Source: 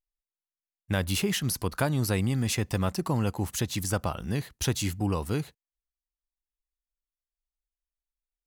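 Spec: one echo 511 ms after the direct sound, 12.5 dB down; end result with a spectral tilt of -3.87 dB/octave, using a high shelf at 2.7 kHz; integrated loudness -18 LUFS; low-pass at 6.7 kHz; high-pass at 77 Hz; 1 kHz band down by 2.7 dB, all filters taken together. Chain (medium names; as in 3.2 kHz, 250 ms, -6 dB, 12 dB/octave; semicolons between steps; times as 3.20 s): high-pass 77 Hz; low-pass 6.7 kHz; peaking EQ 1 kHz -5 dB; treble shelf 2.7 kHz +9 dB; delay 511 ms -12.5 dB; trim +10 dB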